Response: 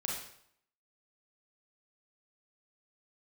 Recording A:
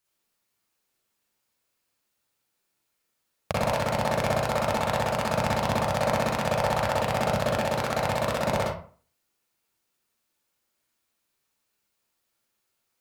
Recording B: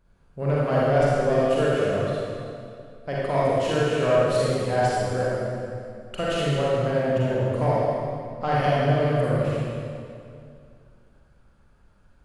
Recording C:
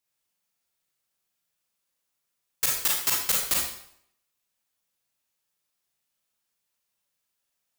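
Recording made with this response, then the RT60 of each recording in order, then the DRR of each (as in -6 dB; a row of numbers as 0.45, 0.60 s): C; 0.45, 2.4, 0.65 s; -5.0, -7.5, -3.0 dB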